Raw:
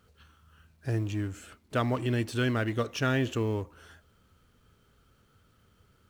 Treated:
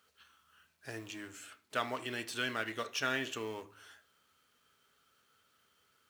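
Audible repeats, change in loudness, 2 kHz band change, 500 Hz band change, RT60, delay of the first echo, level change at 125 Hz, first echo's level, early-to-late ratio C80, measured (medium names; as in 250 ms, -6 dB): no echo, -7.5 dB, -2.0 dB, -9.0 dB, 0.40 s, no echo, -22.0 dB, no echo, 23.0 dB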